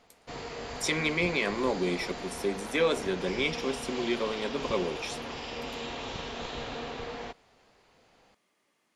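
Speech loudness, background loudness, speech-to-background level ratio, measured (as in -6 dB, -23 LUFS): -30.5 LUFS, -38.0 LUFS, 7.5 dB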